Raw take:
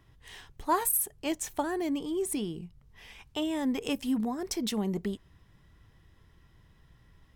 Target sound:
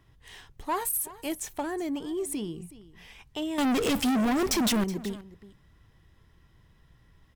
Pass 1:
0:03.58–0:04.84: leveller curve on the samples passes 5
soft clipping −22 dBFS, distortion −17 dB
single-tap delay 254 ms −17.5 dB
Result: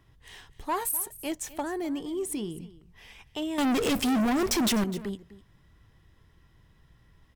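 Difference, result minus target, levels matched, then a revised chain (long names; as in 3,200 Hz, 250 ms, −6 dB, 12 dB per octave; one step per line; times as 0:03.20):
echo 118 ms early
0:03.58–0:04.84: leveller curve on the samples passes 5
soft clipping −22 dBFS, distortion −17 dB
single-tap delay 372 ms −17.5 dB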